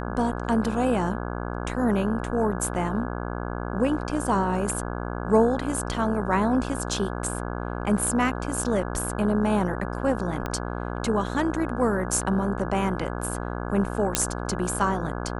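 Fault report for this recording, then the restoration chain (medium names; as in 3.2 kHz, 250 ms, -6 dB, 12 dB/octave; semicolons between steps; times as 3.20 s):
buzz 60 Hz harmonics 28 -31 dBFS
10.46 s: pop -15 dBFS
14.15 s: pop -2 dBFS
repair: de-click; de-hum 60 Hz, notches 28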